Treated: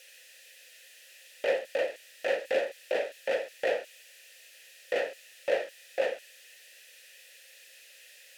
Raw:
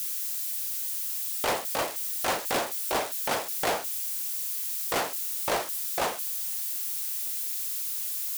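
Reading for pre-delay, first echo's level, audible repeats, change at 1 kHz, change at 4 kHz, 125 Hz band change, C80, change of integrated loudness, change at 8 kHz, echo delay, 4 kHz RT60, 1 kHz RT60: none, none, none, -11.0 dB, -9.0 dB, under -15 dB, none, -4.0 dB, -20.5 dB, none, none, none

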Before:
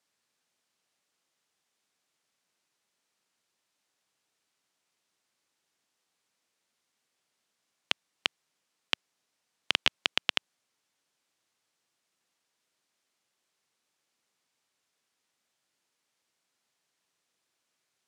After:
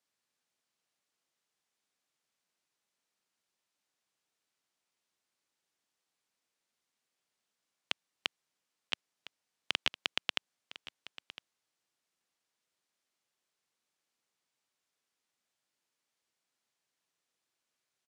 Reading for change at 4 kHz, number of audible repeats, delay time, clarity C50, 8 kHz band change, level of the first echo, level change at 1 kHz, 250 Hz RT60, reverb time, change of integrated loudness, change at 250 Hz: -6.0 dB, 1, 1.008 s, none, -6.0 dB, -16.5 dB, -6.0 dB, none, none, -6.0 dB, -6.0 dB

